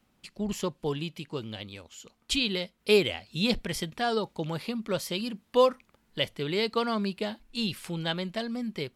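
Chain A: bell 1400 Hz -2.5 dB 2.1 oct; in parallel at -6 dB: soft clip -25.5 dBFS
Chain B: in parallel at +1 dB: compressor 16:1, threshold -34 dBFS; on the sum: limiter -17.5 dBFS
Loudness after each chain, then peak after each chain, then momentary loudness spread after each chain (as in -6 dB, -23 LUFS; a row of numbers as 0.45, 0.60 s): -28.0, -29.5 LUFS; -11.0, -17.5 dBFS; 13, 7 LU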